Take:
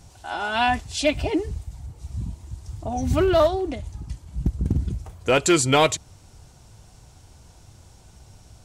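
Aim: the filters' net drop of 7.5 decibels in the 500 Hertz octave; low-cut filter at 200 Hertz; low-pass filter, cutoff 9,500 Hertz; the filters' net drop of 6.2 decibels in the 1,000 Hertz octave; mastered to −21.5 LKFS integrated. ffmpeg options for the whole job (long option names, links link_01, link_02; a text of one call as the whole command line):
ffmpeg -i in.wav -af "highpass=200,lowpass=9500,equalizer=frequency=500:width_type=o:gain=-9,equalizer=frequency=1000:width_type=o:gain=-5,volume=5.5dB" out.wav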